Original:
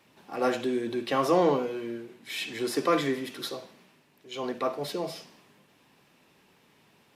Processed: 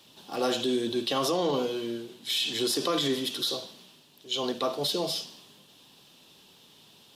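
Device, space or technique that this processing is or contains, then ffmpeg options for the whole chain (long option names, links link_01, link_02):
over-bright horn tweeter: -af "highshelf=frequency=2700:width_type=q:width=3:gain=7,alimiter=limit=-20.5dB:level=0:latency=1:release=34,volume=2dB"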